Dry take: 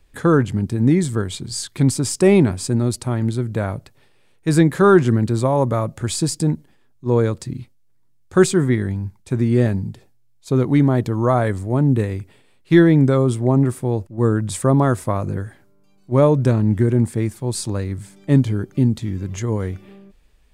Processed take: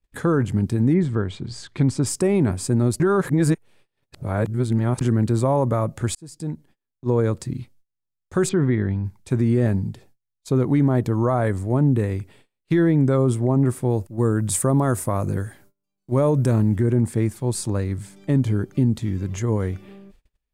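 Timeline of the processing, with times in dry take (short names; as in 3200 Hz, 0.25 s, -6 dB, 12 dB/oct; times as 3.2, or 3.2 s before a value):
0.93–2.05 LPF 2600 Hz -> 5500 Hz
3–5.01 reverse
6.15–7.17 fade in
8.49–9.05 LPF 4200 Hz 24 dB/oct
13.9–16.76 high shelf 6400 Hz +11.5 dB
whole clip: gate -50 dBFS, range -26 dB; dynamic EQ 3900 Hz, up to -6 dB, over -41 dBFS, Q 0.87; limiter -11 dBFS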